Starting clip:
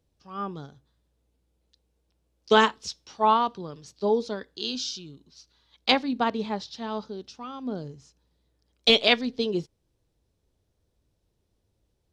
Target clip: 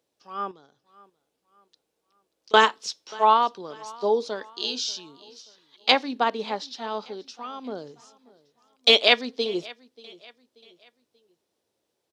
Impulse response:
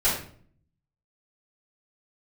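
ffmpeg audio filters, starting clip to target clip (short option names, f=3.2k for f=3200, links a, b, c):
-filter_complex "[0:a]highpass=370,asettb=1/sr,asplit=3[a][b][c];[a]atrim=end=0.514[d];[b]atrim=start=0.51:end=2.54,asetpts=PTS-STARTPTS,afade=t=in:d=0.004:c=qsin,afade=t=out:st=2.026:d=0.004:c=qsin,acompressor=threshold=-55dB:ratio=4[e];[c]atrim=start=2.536[f];[d][e]acrossfade=d=0.004:c1=hsin:c2=qsin[g];[g][f]acrossfade=d=0.004:c1=qsin:c2=hsin,aecho=1:1:584|1168|1752:0.075|0.03|0.012,volume=3dB"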